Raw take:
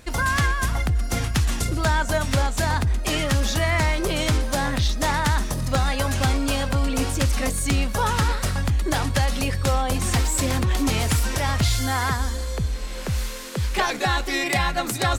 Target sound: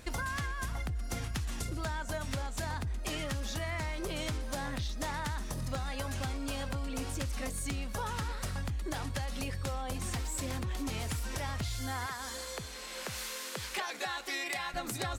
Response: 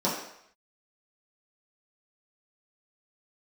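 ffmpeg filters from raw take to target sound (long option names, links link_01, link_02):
-filter_complex "[0:a]asettb=1/sr,asplit=3[link_01][link_02][link_03];[link_01]atrim=end=12.064[link_04];[link_02]atrim=start=12.06:end=14.74,asetpts=PTS-STARTPTS,afade=type=in:duration=0.004:curve=qsin,afade=type=out:start_time=2.676:duration=0.004:curve=qsin,highpass=frequency=720:poles=1[link_05];[link_03]atrim=start=14.736[link_06];[link_04][link_05]acrossfade=duration=0.004:curve1=hsin:curve2=qsin[link_07];[link_07][link_06]acrossfade=duration=0.004:curve1=qsin:curve2=hsin,acompressor=threshold=-30dB:ratio=6,volume=-3.5dB"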